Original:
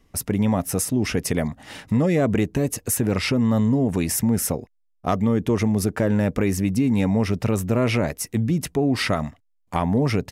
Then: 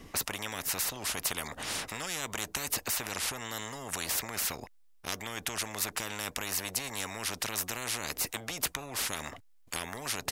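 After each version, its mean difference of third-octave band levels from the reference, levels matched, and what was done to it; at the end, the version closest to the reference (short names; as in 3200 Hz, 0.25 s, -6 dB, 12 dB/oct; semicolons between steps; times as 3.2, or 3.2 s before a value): 15.0 dB: dynamic EQ 2600 Hz, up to -4 dB, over -41 dBFS, Q 0.75; spectral compressor 10:1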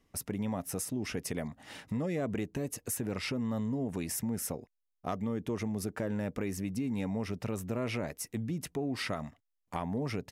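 1.5 dB: low shelf 84 Hz -7.5 dB; compressor 1.5:1, threshold -29 dBFS, peak gain reduction 4.5 dB; gain -8.5 dB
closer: second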